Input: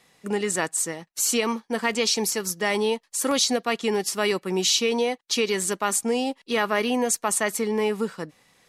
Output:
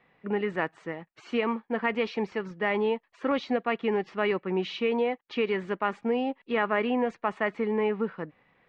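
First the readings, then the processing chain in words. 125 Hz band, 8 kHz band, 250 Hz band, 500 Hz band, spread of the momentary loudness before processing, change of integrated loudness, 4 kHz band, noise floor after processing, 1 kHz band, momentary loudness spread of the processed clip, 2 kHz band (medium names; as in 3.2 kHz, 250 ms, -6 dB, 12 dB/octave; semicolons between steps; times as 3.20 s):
-2.5 dB, under -35 dB, -2.5 dB, -2.5 dB, 5 LU, -5.0 dB, -14.0 dB, -69 dBFS, -2.5 dB, 6 LU, -3.5 dB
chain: low-pass 2.5 kHz 24 dB/octave; trim -2.5 dB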